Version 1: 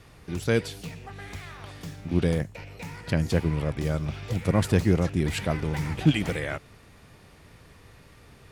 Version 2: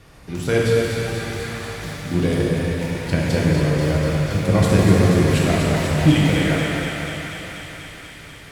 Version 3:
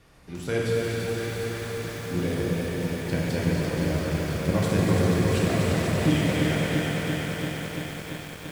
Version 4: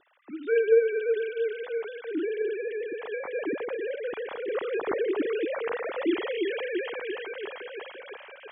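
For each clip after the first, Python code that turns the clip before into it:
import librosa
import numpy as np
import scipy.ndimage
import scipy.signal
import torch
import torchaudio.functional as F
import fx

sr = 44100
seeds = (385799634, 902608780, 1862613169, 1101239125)

y1 = fx.echo_thinned(x, sr, ms=243, feedback_pct=81, hz=710.0, wet_db=-5.5)
y1 = fx.rev_plate(y1, sr, seeds[0], rt60_s=3.5, hf_ratio=0.85, predelay_ms=0, drr_db=-5.0)
y1 = y1 * librosa.db_to_amplitude(2.0)
y2 = fx.hum_notches(y1, sr, base_hz=50, count=3)
y2 = fx.echo_crushed(y2, sr, ms=340, feedback_pct=80, bits=6, wet_db=-4.5)
y2 = y2 * librosa.db_to_amplitude(-8.0)
y3 = fx.sine_speech(y2, sr)
y3 = fx.air_absorb(y3, sr, metres=64.0)
y3 = y3 * librosa.db_to_amplitude(-3.5)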